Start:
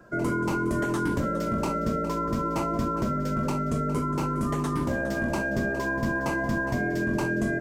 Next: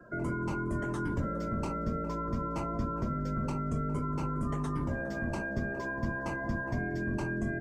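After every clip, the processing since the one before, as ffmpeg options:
ffmpeg -i in.wav -filter_complex "[0:a]acrossover=split=130[link_01][link_02];[link_02]acompressor=threshold=-46dB:ratio=1.5[link_03];[link_01][link_03]amix=inputs=2:normalize=0,afftdn=noise_reduction=14:noise_floor=-54,bandreject=frequency=66.29:width_type=h:width=4,bandreject=frequency=132.58:width_type=h:width=4,bandreject=frequency=198.87:width_type=h:width=4,bandreject=frequency=265.16:width_type=h:width=4,bandreject=frequency=331.45:width_type=h:width=4,bandreject=frequency=397.74:width_type=h:width=4,bandreject=frequency=464.03:width_type=h:width=4,bandreject=frequency=530.32:width_type=h:width=4,bandreject=frequency=596.61:width_type=h:width=4,bandreject=frequency=662.9:width_type=h:width=4,bandreject=frequency=729.19:width_type=h:width=4,bandreject=frequency=795.48:width_type=h:width=4,bandreject=frequency=861.77:width_type=h:width=4,bandreject=frequency=928.06:width_type=h:width=4,bandreject=frequency=994.35:width_type=h:width=4,bandreject=frequency=1060.64:width_type=h:width=4,bandreject=frequency=1126.93:width_type=h:width=4,bandreject=frequency=1193.22:width_type=h:width=4,bandreject=frequency=1259.51:width_type=h:width=4,bandreject=frequency=1325.8:width_type=h:width=4,bandreject=frequency=1392.09:width_type=h:width=4,bandreject=frequency=1458.38:width_type=h:width=4,bandreject=frequency=1524.67:width_type=h:width=4,bandreject=frequency=1590.96:width_type=h:width=4,bandreject=frequency=1657.25:width_type=h:width=4,bandreject=frequency=1723.54:width_type=h:width=4,bandreject=frequency=1789.83:width_type=h:width=4,bandreject=frequency=1856.12:width_type=h:width=4" out.wav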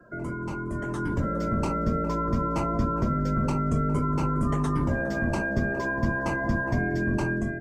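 ffmpeg -i in.wav -af "dynaudnorm=framelen=730:gausssize=3:maxgain=7.5dB" out.wav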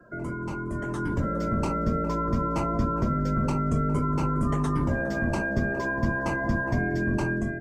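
ffmpeg -i in.wav -af anull out.wav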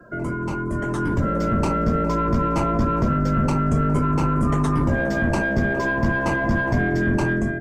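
ffmpeg -i in.wav -af "aeval=exprs='(tanh(7.94*val(0)+0.25)-tanh(0.25))/7.94':channel_layout=same,volume=7dB" out.wav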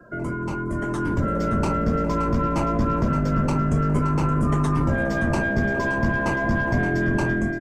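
ffmpeg -i in.wav -af "aecho=1:1:572:0.266,aresample=32000,aresample=44100,volume=-1.5dB" out.wav

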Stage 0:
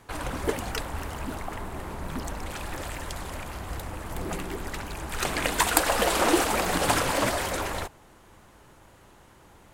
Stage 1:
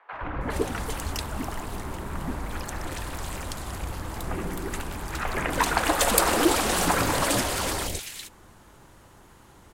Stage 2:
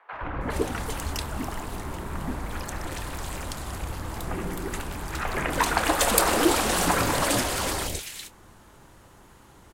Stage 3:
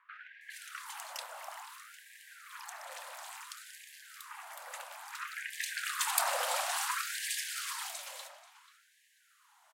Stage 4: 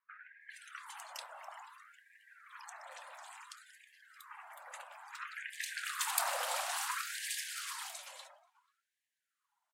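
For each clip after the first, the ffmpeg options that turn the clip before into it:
ffmpeg -i in.wav -filter_complex "[0:a]acrossover=split=600|2400[link_01][link_02][link_03];[link_01]adelay=120[link_04];[link_03]adelay=410[link_05];[link_04][link_02][link_05]amix=inputs=3:normalize=0,volume=2.5dB" out.wav
ffmpeg -i in.wav -filter_complex "[0:a]asplit=2[link_01][link_02];[link_02]adelay=28,volume=-14dB[link_03];[link_01][link_03]amix=inputs=2:normalize=0" out.wav
ffmpeg -i in.wav -filter_complex "[0:a]aeval=exprs='0.891*(cos(1*acos(clip(val(0)/0.891,-1,1)))-cos(1*PI/2))+0.0141*(cos(4*acos(clip(val(0)/0.891,-1,1)))-cos(4*PI/2))':channel_layout=same,asplit=2[link_01][link_02];[link_02]adelay=486,lowpass=frequency=2800:poles=1,volume=-12.5dB,asplit=2[link_03][link_04];[link_04]adelay=486,lowpass=frequency=2800:poles=1,volume=0.34,asplit=2[link_05][link_06];[link_06]adelay=486,lowpass=frequency=2800:poles=1,volume=0.34[link_07];[link_01][link_03][link_05][link_07]amix=inputs=4:normalize=0,afftfilt=real='re*gte(b*sr/1024,490*pow(1600/490,0.5+0.5*sin(2*PI*0.58*pts/sr)))':imag='im*gte(b*sr/1024,490*pow(1600/490,0.5+0.5*sin(2*PI*0.58*pts/sr)))':win_size=1024:overlap=0.75,volume=-8.5dB" out.wav
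ffmpeg -i in.wav -af "highpass=460,afftdn=noise_reduction=19:noise_floor=-52,volume=-3dB" out.wav

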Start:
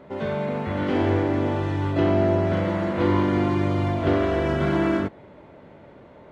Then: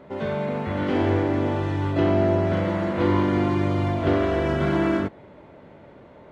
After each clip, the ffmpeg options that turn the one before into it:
ffmpeg -i in.wav -af anull out.wav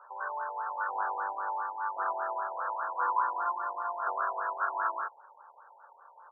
ffmpeg -i in.wav -af "asuperpass=centerf=1300:order=12:qfactor=0.6,aecho=1:1:0.8:0.89,afftfilt=real='re*lt(b*sr/1024,950*pow(1900/950,0.5+0.5*sin(2*PI*5*pts/sr)))':imag='im*lt(b*sr/1024,950*pow(1900/950,0.5+0.5*sin(2*PI*5*pts/sr)))':win_size=1024:overlap=0.75" out.wav

